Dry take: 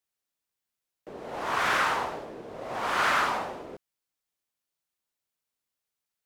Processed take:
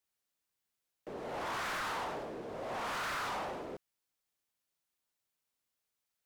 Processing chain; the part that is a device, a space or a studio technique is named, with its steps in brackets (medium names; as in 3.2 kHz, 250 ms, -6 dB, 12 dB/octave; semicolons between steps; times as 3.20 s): saturation between pre-emphasis and de-emphasis (treble shelf 3.9 kHz +7.5 dB; saturation -34.5 dBFS, distortion -4 dB; treble shelf 3.9 kHz -7.5 dB)